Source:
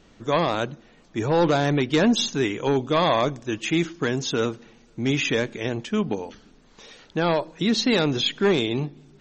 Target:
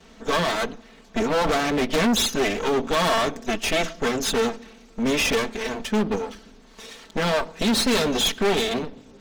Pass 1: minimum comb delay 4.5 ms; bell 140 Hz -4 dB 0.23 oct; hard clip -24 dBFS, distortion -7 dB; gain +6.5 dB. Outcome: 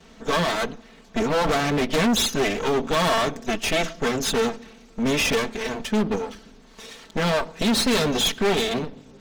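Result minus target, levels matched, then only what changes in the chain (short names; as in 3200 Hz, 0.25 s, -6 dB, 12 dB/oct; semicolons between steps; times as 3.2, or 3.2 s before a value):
125 Hz band +3.0 dB
change: bell 140 Hz -14 dB 0.23 oct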